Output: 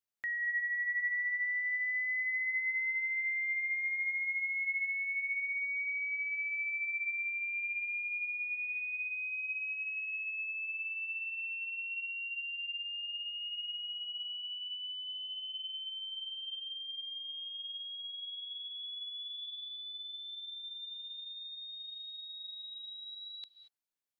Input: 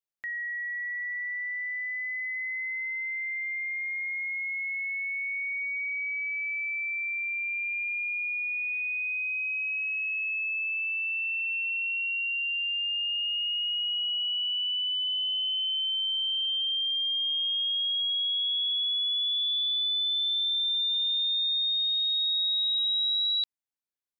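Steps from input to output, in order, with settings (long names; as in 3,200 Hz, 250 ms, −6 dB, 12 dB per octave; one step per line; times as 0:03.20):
0:18.83–0:19.45: elliptic high-pass filter 2,200 Hz
compressor whose output falls as the input rises −33 dBFS, ratio −0.5
reverb whose tail is shaped and stops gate 250 ms rising, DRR 11.5 dB
level −4.5 dB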